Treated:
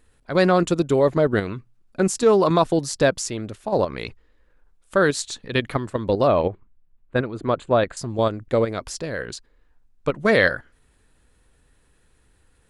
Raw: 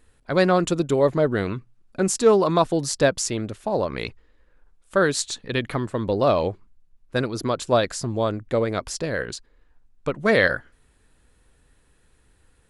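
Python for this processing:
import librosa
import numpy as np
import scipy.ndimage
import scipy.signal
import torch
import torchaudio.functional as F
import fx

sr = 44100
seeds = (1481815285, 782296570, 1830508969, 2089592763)

p1 = fx.level_steps(x, sr, step_db=23)
p2 = x + (p1 * 10.0 ** (3.0 / 20.0))
p3 = fx.moving_average(p2, sr, points=8, at=(6.27, 7.97))
y = p3 * 10.0 ** (-3.5 / 20.0)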